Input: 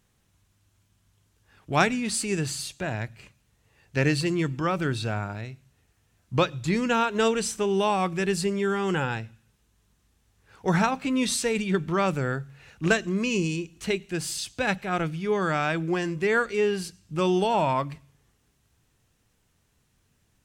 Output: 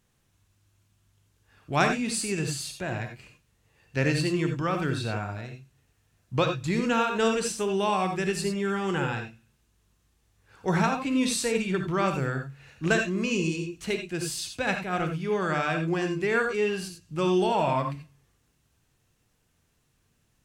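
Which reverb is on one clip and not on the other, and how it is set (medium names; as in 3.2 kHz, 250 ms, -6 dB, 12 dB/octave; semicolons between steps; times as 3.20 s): gated-style reverb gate 110 ms rising, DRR 4.5 dB; trim -2.5 dB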